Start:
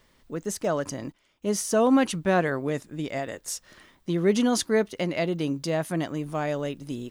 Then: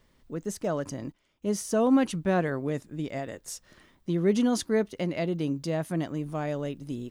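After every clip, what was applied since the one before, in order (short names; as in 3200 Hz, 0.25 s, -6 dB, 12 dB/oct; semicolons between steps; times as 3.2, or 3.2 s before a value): low shelf 440 Hz +6.5 dB; gain -6 dB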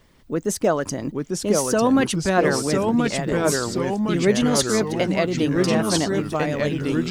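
harmonic-percussive split percussive +9 dB; echoes that change speed 0.789 s, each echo -2 st, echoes 3; gain +3 dB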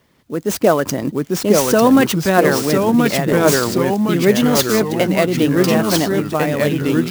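HPF 94 Hz; AGC; clock jitter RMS 0.022 ms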